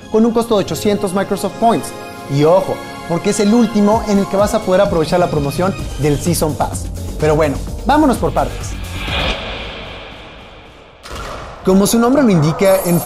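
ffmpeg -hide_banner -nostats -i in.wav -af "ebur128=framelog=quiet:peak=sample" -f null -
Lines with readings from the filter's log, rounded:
Integrated loudness:
  I:         -15.0 LUFS
  Threshold: -25.6 LUFS
Loudness range:
  LRA:         5.7 LU
  Threshold: -36.0 LUFS
  LRA low:   -19.9 LUFS
  LRA high:  -14.2 LUFS
Sample peak:
  Peak:       -2.6 dBFS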